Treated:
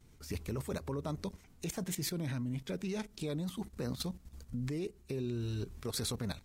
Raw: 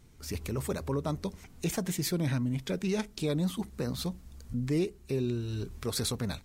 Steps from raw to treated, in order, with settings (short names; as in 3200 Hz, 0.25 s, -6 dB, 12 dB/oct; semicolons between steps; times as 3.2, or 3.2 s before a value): level quantiser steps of 12 dB